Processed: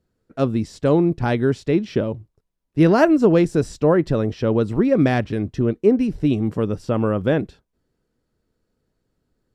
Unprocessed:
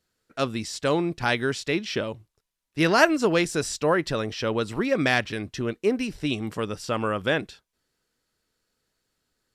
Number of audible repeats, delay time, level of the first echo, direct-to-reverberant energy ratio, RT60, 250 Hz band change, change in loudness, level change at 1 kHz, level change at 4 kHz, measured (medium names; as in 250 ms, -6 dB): no echo, no echo, no echo, no reverb, no reverb, +9.0 dB, +5.5 dB, +1.0 dB, -7.5 dB